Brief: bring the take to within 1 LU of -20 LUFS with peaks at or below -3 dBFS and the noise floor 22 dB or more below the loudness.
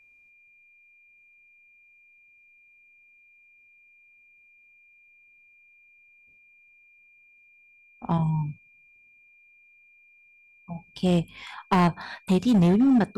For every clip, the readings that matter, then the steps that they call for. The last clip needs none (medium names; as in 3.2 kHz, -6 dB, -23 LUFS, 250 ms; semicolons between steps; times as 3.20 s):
clipped samples 1.1%; clipping level -15.5 dBFS; steady tone 2.4 kHz; tone level -55 dBFS; loudness -24.0 LUFS; peak level -15.5 dBFS; loudness target -20.0 LUFS
-> clip repair -15.5 dBFS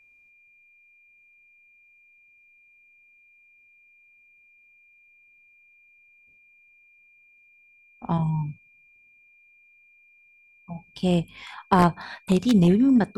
clipped samples 0.0%; steady tone 2.4 kHz; tone level -55 dBFS
-> band-stop 2.4 kHz, Q 30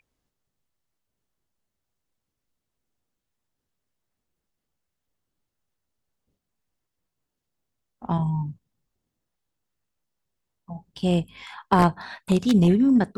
steady tone not found; loudness -22.0 LUFS; peak level -6.5 dBFS; loudness target -20.0 LUFS
-> trim +2 dB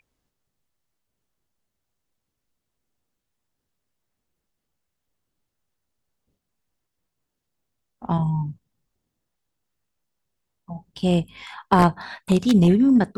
loudness -20.0 LUFS; peak level -4.5 dBFS; noise floor -81 dBFS